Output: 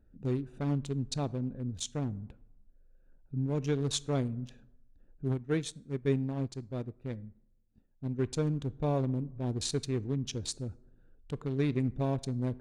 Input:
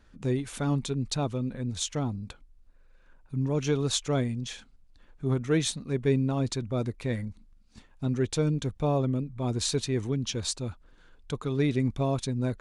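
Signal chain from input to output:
adaptive Wiener filter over 41 samples
dense smooth reverb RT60 0.92 s, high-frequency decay 0.5×, DRR 18.5 dB
0:05.32–0:08.19: expander for the loud parts 1.5 to 1, over −39 dBFS
level −3.5 dB

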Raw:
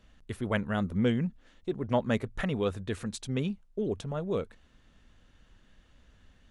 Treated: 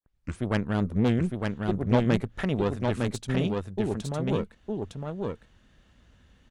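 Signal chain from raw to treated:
turntable start at the beginning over 0.40 s
high-pass filter 84 Hz 6 dB per octave
low-shelf EQ 190 Hz +6.5 dB
harmonic generator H 4 −14 dB, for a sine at −14 dBFS
single-tap delay 908 ms −3.5 dB

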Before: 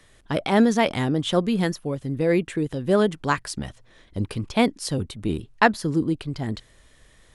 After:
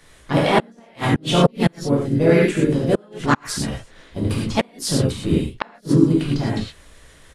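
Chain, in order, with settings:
reverb whose tail is shaped and stops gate 140 ms flat, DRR −5 dB
gate with flip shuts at −5 dBFS, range −36 dB
pitch-shifted copies added −5 semitones −16 dB, −3 semitones −7 dB, +4 semitones −12 dB
level +1 dB

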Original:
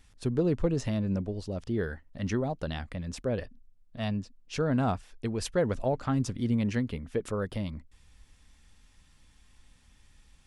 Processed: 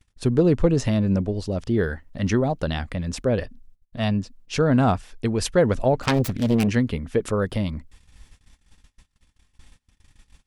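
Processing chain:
0:06.03–0:06.68: phase distortion by the signal itself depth 0.92 ms
noise gate −55 dBFS, range −27 dB
level +8.5 dB

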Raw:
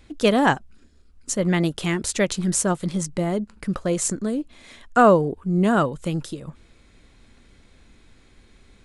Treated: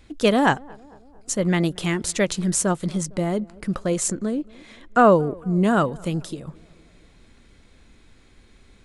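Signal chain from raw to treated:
0:04.11–0:05.12: high-shelf EQ 6,700 Hz −10 dB
on a send: tape delay 227 ms, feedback 67%, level −23 dB, low-pass 1,100 Hz

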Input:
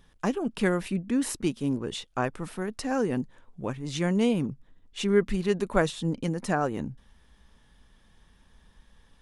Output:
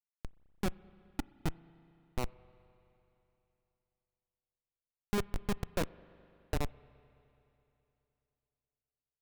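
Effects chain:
low-pass that shuts in the quiet parts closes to 360 Hz, open at −22 dBFS
comparator with hysteresis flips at −19.5 dBFS
spring reverb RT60 3.1 s, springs 30/42 ms, chirp 70 ms, DRR 20 dB

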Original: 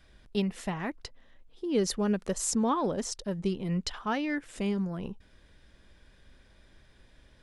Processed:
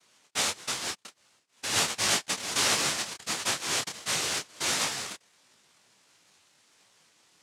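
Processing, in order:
cochlear-implant simulation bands 1
micro pitch shift up and down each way 50 cents
level +4 dB

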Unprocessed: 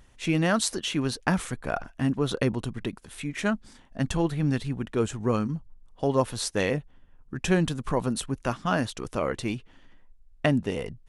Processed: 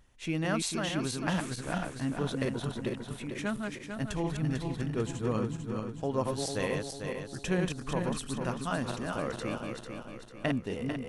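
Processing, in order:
feedback delay that plays each chunk backwards 223 ms, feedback 67%, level −3.5 dB
level −7.5 dB

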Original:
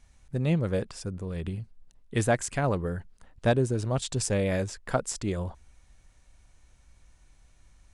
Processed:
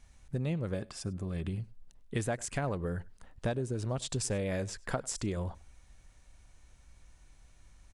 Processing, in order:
downward compressor 5 to 1, threshold −30 dBFS, peak gain reduction 11 dB
0:00.74–0:01.49: notch comb filter 480 Hz
slap from a distant wall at 17 metres, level −23 dB

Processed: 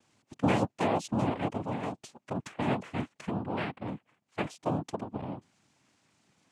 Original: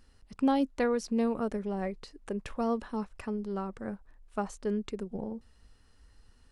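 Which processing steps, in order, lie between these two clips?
0:03.34–0:03.88: high shelf with overshoot 1,500 Hz −12 dB, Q 3
cochlear-implant simulation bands 4

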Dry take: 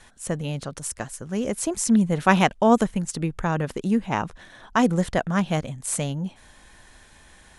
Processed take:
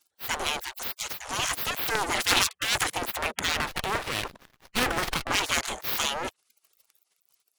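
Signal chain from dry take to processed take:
auto-filter notch saw up 4.3 Hz 290–3,500 Hz
leveller curve on the samples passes 5
gate on every frequency bin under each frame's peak −25 dB weak
0:03.56–0:05.28: windowed peak hold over 5 samples

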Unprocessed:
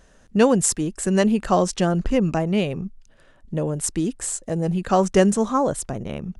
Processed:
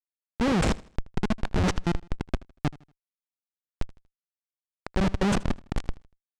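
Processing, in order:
dynamic equaliser 2,300 Hz, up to +4 dB, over −47 dBFS, Q 6.7
transient designer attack −11 dB, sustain +11 dB
comparator with hysteresis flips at −14 dBFS
high-frequency loss of the air 90 metres
repeating echo 79 ms, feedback 35%, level −21 dB

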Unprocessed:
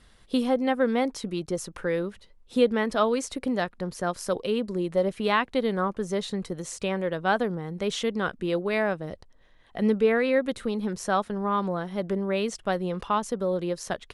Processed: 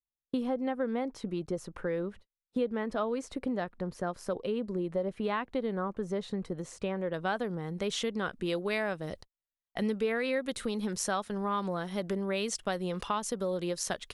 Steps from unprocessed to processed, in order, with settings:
noise gate −44 dBFS, range −45 dB
high-shelf EQ 2,600 Hz −10.5 dB, from 0:07.14 +2.5 dB, from 0:08.46 +9 dB
downward compressor 2.5 to 1, threshold −28 dBFS, peak gain reduction 8.5 dB
level −2 dB

